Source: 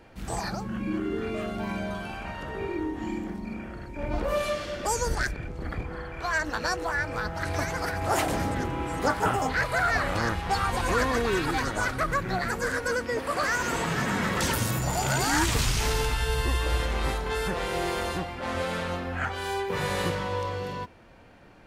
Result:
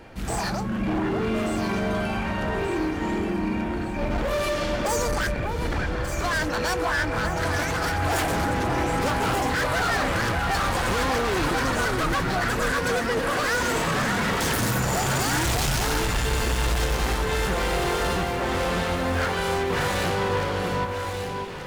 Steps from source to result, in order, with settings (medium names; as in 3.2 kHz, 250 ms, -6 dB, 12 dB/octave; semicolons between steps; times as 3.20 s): overload inside the chain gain 30.5 dB; echo whose repeats swap between lows and highs 592 ms, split 2.1 kHz, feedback 66%, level -4 dB; trim +7 dB